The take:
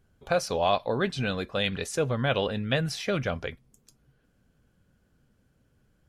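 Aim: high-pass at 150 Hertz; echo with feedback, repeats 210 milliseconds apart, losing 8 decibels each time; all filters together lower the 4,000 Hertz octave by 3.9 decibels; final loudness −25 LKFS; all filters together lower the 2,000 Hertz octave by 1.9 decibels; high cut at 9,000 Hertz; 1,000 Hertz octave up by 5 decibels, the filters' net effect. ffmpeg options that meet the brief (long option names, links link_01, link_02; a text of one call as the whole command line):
ffmpeg -i in.wav -af "highpass=150,lowpass=9000,equalizer=frequency=1000:width_type=o:gain=8.5,equalizer=frequency=2000:width_type=o:gain=-5.5,equalizer=frequency=4000:width_type=o:gain=-3.5,aecho=1:1:210|420|630|840|1050:0.398|0.159|0.0637|0.0255|0.0102,volume=1.5dB" out.wav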